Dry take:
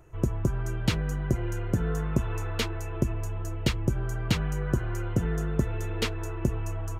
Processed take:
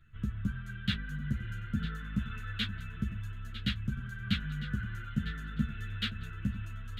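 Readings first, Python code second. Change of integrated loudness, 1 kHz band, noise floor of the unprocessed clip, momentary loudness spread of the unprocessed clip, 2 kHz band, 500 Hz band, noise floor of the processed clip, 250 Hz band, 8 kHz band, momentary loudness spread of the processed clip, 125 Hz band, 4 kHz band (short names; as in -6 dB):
-6.5 dB, -10.0 dB, -33 dBFS, 3 LU, -2.0 dB, -25.0 dB, -43 dBFS, -5.0 dB, -18.0 dB, 4 LU, -7.5 dB, -1.0 dB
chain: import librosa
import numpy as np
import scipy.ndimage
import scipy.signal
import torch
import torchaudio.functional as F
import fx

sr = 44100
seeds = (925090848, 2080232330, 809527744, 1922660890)

p1 = fx.curve_eq(x, sr, hz=(160.0, 230.0, 330.0, 490.0, 900.0, 1500.0, 2300.0, 3600.0, 5500.0, 14000.0), db=(0, 5, -19, -19, -23, 7, -1, 9, -13, -9))
p2 = p1 + fx.echo_feedback(p1, sr, ms=952, feedback_pct=30, wet_db=-13.5, dry=0)
p3 = fx.ensemble(p2, sr)
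y = F.gain(torch.from_numpy(p3), -3.0).numpy()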